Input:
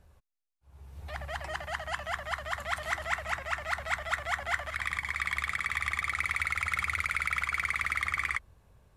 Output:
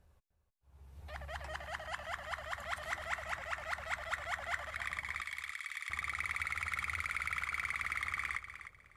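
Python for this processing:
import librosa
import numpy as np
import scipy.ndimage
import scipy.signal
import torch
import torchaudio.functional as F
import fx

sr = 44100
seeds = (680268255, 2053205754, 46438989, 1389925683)

y = fx.bessel_highpass(x, sr, hz=2300.0, order=2, at=(5.21, 5.9))
y = fx.echo_feedback(y, sr, ms=304, feedback_pct=23, wet_db=-11.0)
y = F.gain(torch.from_numpy(y), -7.0).numpy()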